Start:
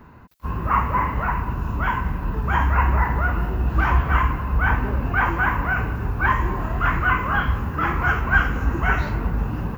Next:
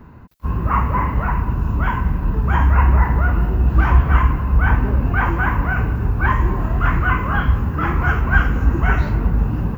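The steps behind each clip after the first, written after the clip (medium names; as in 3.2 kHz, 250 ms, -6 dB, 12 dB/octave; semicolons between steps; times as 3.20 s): bass shelf 430 Hz +7.5 dB; trim -1 dB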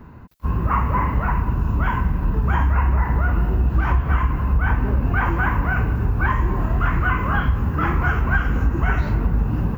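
compression, threshold -14 dBFS, peak gain reduction 7.5 dB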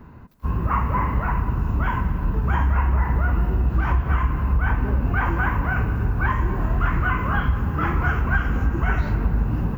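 reverberation RT60 3.2 s, pre-delay 95 ms, DRR 14 dB; trim -2 dB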